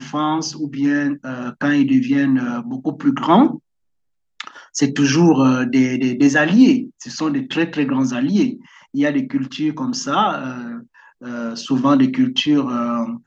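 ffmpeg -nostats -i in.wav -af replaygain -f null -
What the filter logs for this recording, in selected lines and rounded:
track_gain = -2.6 dB
track_peak = 0.614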